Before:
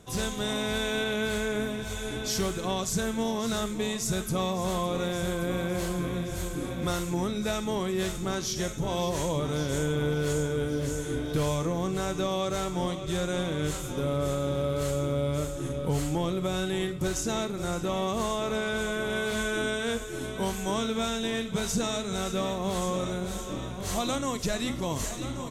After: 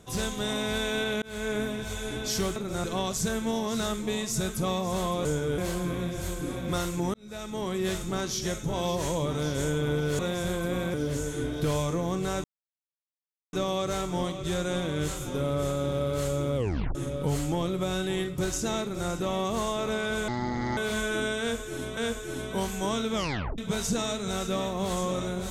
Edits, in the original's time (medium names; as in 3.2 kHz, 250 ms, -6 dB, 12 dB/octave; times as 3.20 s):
1.22–1.50 s: fade in
4.97–5.72 s: swap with 10.33–10.66 s
7.28–7.93 s: fade in
12.16 s: insert silence 1.09 s
15.19 s: tape stop 0.39 s
17.45–17.73 s: copy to 2.56 s
18.91–19.19 s: speed 57%
19.82–20.39 s: loop, 2 plays
20.99 s: tape stop 0.44 s